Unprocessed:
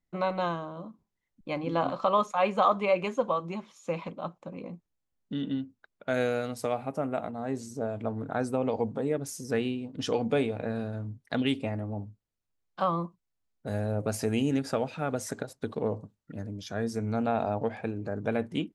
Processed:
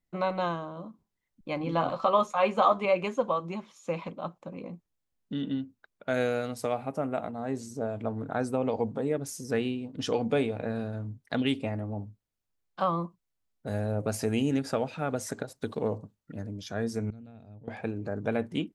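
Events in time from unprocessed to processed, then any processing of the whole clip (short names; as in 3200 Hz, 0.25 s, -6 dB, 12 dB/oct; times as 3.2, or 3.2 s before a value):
1.59–2.85 doubler 13 ms -7 dB
15.55–15.98 high shelf 3800 Hz +7.5 dB
17.1–17.68 passive tone stack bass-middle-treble 10-0-1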